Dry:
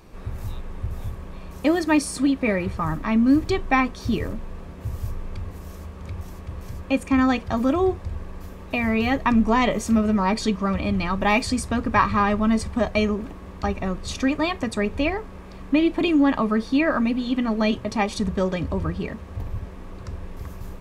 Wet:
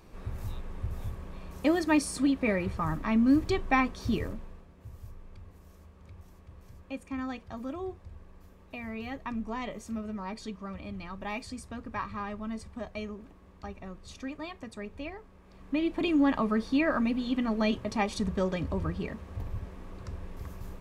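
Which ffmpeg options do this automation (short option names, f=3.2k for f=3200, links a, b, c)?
-af "volume=5dB,afade=t=out:st=4.17:d=0.49:silence=0.281838,afade=t=in:st=15.41:d=0.81:silence=0.298538"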